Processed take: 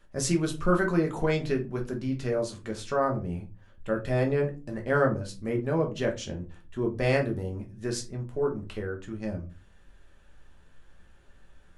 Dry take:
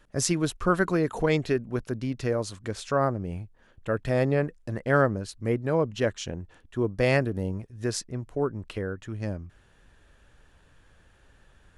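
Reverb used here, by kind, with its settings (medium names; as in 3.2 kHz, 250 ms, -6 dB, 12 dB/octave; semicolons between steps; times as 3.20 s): simulated room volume 120 m³, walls furnished, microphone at 1.2 m; trim -4.5 dB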